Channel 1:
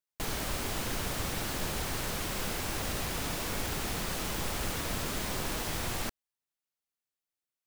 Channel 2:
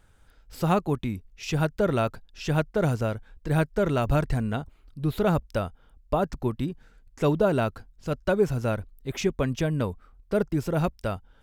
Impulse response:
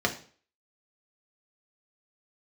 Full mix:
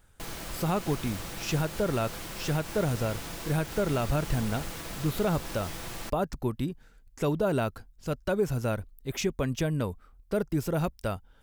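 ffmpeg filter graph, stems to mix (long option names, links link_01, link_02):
-filter_complex "[0:a]aecho=1:1:6:0.31,volume=-5dB[link_01];[1:a]highshelf=frequency=7900:gain=9.5,volume=-2dB[link_02];[link_01][link_02]amix=inputs=2:normalize=0,alimiter=limit=-17dB:level=0:latency=1:release=109"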